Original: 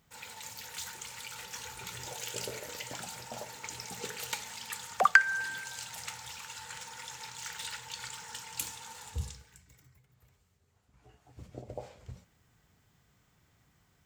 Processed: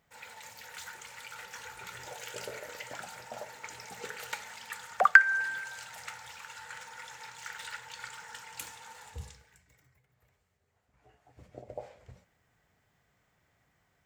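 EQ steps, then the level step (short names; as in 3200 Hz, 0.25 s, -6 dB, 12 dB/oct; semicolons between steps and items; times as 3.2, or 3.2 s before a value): bell 1900 Hz +7.5 dB 0.94 oct; dynamic EQ 1400 Hz, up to +6 dB, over -52 dBFS, Q 3.2; bell 620 Hz +8.5 dB 1.2 oct; -7.0 dB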